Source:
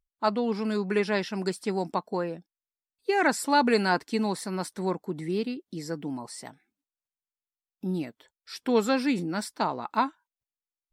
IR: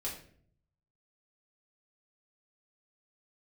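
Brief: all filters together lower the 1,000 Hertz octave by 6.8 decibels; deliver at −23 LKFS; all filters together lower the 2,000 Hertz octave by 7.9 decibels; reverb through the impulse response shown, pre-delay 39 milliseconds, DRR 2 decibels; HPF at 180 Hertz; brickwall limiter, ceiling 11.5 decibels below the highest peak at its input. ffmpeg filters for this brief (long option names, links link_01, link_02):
-filter_complex "[0:a]highpass=180,equalizer=frequency=1000:width_type=o:gain=-7,equalizer=frequency=2000:width_type=o:gain=-8,alimiter=limit=-23.5dB:level=0:latency=1,asplit=2[link_01][link_02];[1:a]atrim=start_sample=2205,adelay=39[link_03];[link_02][link_03]afir=irnorm=-1:irlink=0,volume=-3dB[link_04];[link_01][link_04]amix=inputs=2:normalize=0,volume=8.5dB"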